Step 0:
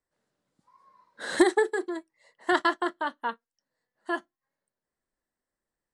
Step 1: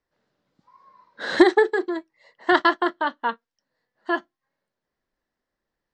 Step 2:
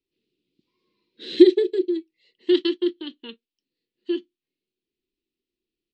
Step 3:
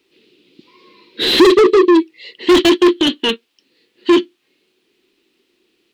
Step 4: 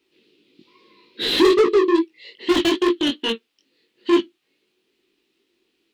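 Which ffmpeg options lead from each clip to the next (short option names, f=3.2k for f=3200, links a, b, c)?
-af "lowpass=f=5.5k:w=0.5412,lowpass=f=5.5k:w=1.3066,volume=6dB"
-af "firequalizer=gain_entry='entry(160,0);entry(370,13);entry(640,-24);entry(1600,-18);entry(2500,11);entry(4100,8);entry(6000,-2)':delay=0.05:min_phase=1,volume=-8dB"
-filter_complex "[0:a]asplit=2[a][b];[b]highpass=f=720:p=1,volume=38dB,asoftclip=type=tanh:threshold=-1dB[c];[a][c]amix=inputs=2:normalize=0,lowpass=f=2.3k:p=1,volume=-6dB"
-af "flanger=delay=17.5:depth=4.1:speed=2.4,volume=-3.5dB"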